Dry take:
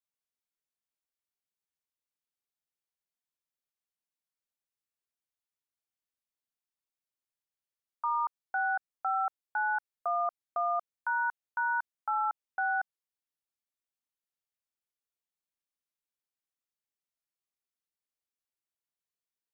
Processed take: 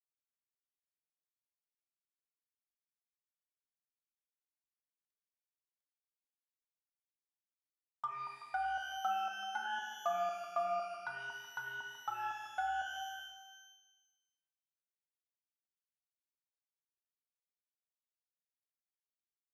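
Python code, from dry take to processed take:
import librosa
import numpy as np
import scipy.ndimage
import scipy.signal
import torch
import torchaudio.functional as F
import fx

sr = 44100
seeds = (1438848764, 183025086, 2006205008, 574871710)

y = fx.law_mismatch(x, sr, coded='mu')
y = fx.env_lowpass_down(y, sr, base_hz=660.0, full_db=-27.5)
y = fx.notch_comb(y, sr, f0_hz=470.0)
y = y + 10.0 ** (-14.5 / 20.0) * np.pad(y, (int(379 * sr / 1000.0), 0))[:len(y)]
y = fx.rev_shimmer(y, sr, seeds[0], rt60_s=1.2, semitones=12, shimmer_db=-8, drr_db=1.5)
y = F.gain(torch.from_numpy(y), -3.5).numpy()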